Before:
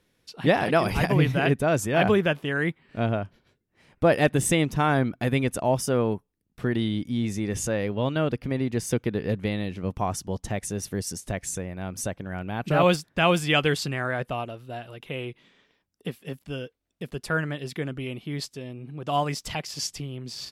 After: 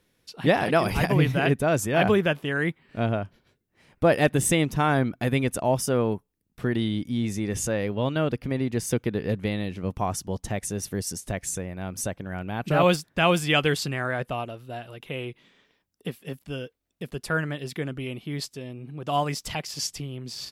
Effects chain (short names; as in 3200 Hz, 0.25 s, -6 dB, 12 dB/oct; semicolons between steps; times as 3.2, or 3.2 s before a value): high shelf 12000 Hz +6 dB